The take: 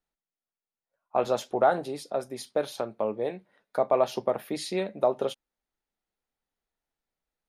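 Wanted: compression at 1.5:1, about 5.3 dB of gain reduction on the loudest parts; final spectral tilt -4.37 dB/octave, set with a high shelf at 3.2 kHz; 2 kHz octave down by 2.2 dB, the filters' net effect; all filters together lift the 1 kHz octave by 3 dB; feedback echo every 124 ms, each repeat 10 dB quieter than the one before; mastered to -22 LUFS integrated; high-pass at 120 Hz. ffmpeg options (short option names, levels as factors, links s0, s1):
-af "highpass=120,equalizer=f=1000:t=o:g=6,equalizer=f=2000:t=o:g=-4.5,highshelf=f=3200:g=-7.5,acompressor=threshold=0.0316:ratio=1.5,aecho=1:1:124|248|372|496:0.316|0.101|0.0324|0.0104,volume=2.82"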